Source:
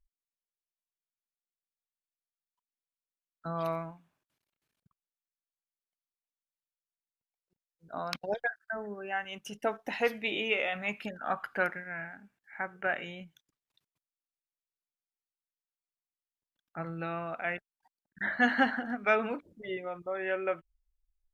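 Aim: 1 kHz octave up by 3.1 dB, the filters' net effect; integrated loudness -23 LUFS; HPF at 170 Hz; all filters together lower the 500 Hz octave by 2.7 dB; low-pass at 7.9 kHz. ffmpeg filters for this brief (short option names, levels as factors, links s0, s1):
-af "highpass=170,lowpass=7900,equalizer=f=500:t=o:g=-6,equalizer=f=1000:t=o:g=7,volume=2.99"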